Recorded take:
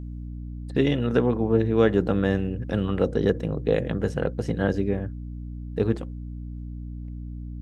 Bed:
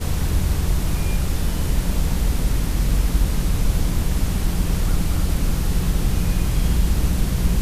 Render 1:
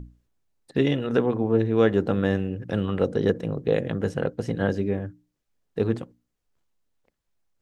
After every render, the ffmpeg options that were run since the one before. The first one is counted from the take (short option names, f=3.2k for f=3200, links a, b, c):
-af "bandreject=f=60:t=h:w=6,bandreject=f=120:t=h:w=6,bandreject=f=180:t=h:w=6,bandreject=f=240:t=h:w=6,bandreject=f=300:t=h:w=6"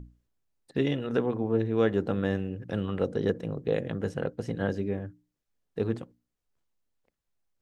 -af "volume=-5dB"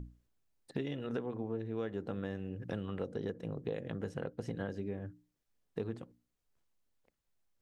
-af "acompressor=threshold=-35dB:ratio=6"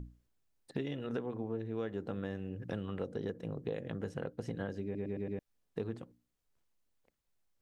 -filter_complex "[0:a]asplit=6[a][b][c][d][e][f];[a]atrim=end=4.952[g];[b]atrim=start=4.838:end=4.952[h];[c]atrim=start=4.838:end=4.952[i];[d]atrim=start=4.838:end=4.952[j];[e]atrim=start=4.838:end=4.952[k];[f]atrim=start=5.388[l];[g][h]acrossfade=d=0.004:c1=hsin:c2=hsin[m];[m][i]acrossfade=d=0.004:c1=hsin:c2=hsin[n];[n][j]acrossfade=d=0.004:c1=hsin:c2=hsin[o];[o][k]acrossfade=d=0.004:c1=hsin:c2=hsin[p];[p][l]acrossfade=d=0.004:c1=hsin:c2=hsin"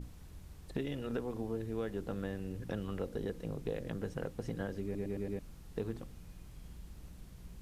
-filter_complex "[1:a]volume=-31.5dB[a];[0:a][a]amix=inputs=2:normalize=0"